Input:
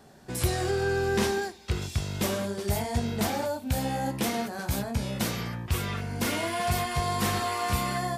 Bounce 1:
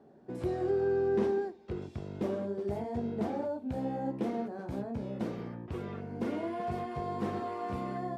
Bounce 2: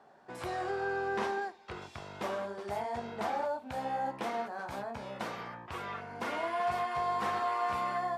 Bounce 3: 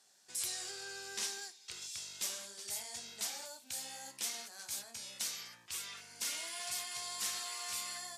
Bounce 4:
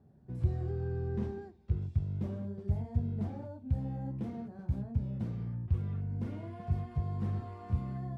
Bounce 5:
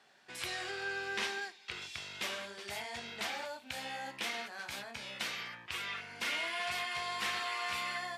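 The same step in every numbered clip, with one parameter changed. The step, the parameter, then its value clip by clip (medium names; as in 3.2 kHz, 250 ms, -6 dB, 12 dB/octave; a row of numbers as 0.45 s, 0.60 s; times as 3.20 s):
band-pass filter, frequency: 350 Hz, 940 Hz, 6.9 kHz, 100 Hz, 2.5 kHz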